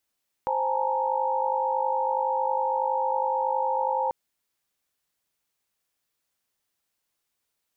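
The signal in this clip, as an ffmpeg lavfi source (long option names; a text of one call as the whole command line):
ffmpeg -f lavfi -i "aevalsrc='0.0376*(sin(2*PI*523.25*t)+sin(2*PI*830.61*t)+sin(2*PI*880*t)+sin(2*PI*932.33*t))':duration=3.64:sample_rate=44100" out.wav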